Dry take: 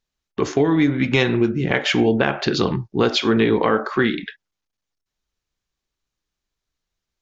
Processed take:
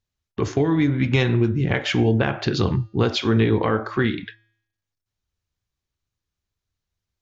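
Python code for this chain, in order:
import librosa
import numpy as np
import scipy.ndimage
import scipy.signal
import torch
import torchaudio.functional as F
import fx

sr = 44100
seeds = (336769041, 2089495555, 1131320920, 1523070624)

y = fx.peak_eq(x, sr, hz=92.0, db=14.5, octaves=1.1)
y = fx.comb_fb(y, sr, f0_hz=110.0, decay_s=0.72, harmonics='odd', damping=0.0, mix_pct=40)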